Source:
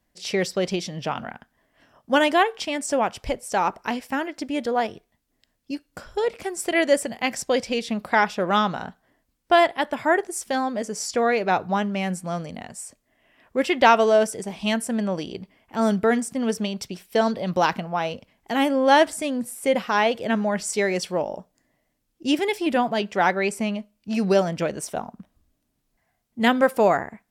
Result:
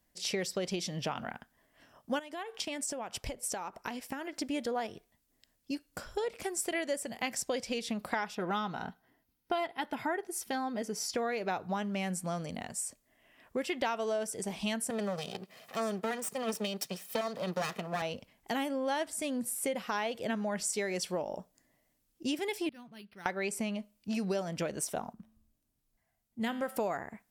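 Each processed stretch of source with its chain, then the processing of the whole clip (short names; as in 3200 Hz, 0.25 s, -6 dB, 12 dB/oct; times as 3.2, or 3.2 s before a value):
2.19–4.33 compressor 10:1, threshold -31 dBFS + transient shaper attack +3 dB, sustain -4 dB
8.35–11.16 bell 7800 Hz -9.5 dB 0.65 oct + notch comb 570 Hz
14.9–18.02 minimum comb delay 1.6 ms + HPF 150 Hz 24 dB/oct + upward compressor, threshold -38 dBFS
22.69–23.26 passive tone stack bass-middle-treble 6-0-2 + decimation joined by straight lines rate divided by 6×
25.13–26.76 low shelf 130 Hz +7 dB + resonator 110 Hz, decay 0.68 s
whole clip: high shelf 5900 Hz +8 dB; compressor 5:1, threshold -27 dBFS; gain -4 dB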